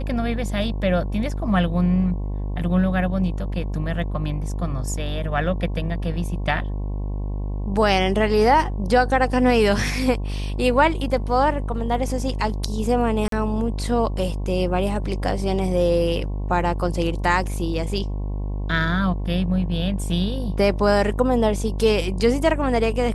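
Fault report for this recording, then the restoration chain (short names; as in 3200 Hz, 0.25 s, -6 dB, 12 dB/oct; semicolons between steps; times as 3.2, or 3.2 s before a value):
buzz 50 Hz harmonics 22 -26 dBFS
13.28–13.32 gap 43 ms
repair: de-hum 50 Hz, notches 22; interpolate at 13.28, 43 ms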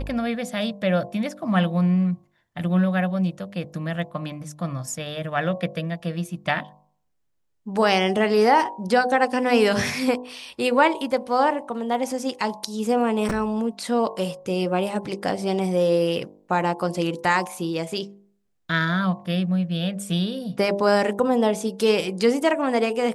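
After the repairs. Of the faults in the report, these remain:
none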